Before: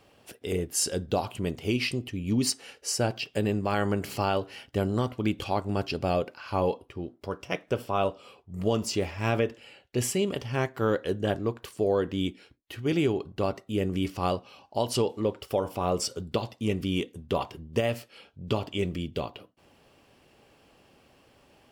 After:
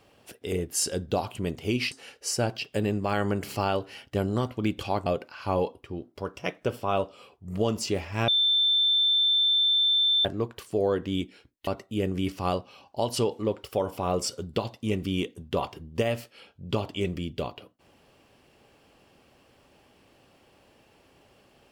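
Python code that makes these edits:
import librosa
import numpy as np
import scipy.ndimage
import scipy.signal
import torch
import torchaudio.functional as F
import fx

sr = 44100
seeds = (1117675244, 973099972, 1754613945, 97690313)

y = fx.edit(x, sr, fx.cut(start_s=1.92, length_s=0.61),
    fx.cut(start_s=5.67, length_s=0.45),
    fx.bleep(start_s=9.34, length_s=1.97, hz=3550.0, db=-19.5),
    fx.cut(start_s=12.73, length_s=0.72), tone=tone)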